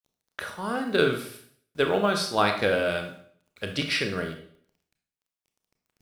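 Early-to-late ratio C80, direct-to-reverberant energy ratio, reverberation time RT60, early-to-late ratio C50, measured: 11.5 dB, 5.0 dB, 0.60 s, 8.0 dB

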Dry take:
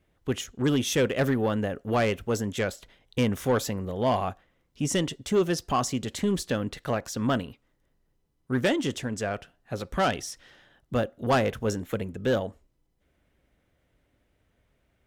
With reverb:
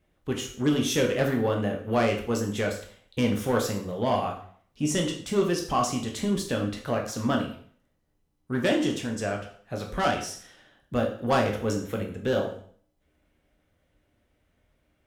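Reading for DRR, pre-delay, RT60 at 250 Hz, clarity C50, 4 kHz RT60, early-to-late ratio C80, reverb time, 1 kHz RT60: 1.5 dB, 6 ms, 0.50 s, 8.0 dB, 0.50 s, 12.0 dB, 0.50 s, 0.55 s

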